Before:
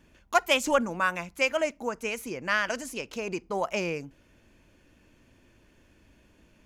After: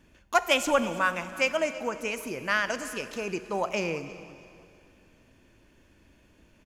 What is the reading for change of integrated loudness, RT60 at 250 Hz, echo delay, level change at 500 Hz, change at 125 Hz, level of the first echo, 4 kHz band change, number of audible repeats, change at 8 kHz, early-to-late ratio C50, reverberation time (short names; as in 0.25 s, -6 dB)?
+0.5 dB, 2.5 s, 0.325 s, +0.5 dB, 0.0 dB, -19.0 dB, +0.5 dB, 2, +0.5 dB, 12.0 dB, 2.6 s